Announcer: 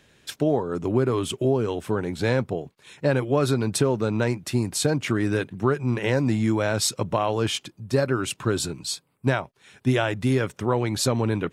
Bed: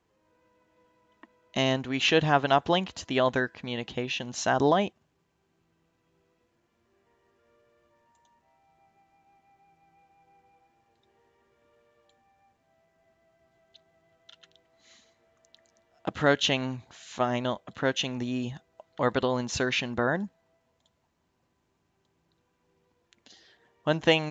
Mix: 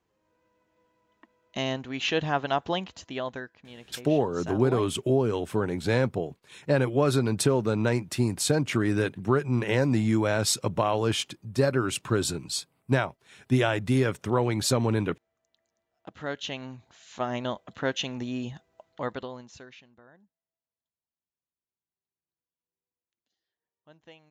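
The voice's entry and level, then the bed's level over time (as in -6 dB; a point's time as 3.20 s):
3.65 s, -1.5 dB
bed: 2.87 s -4 dB
3.64 s -13.5 dB
15.97 s -13.5 dB
17.47 s -1.5 dB
18.86 s -1.5 dB
20.03 s -29.5 dB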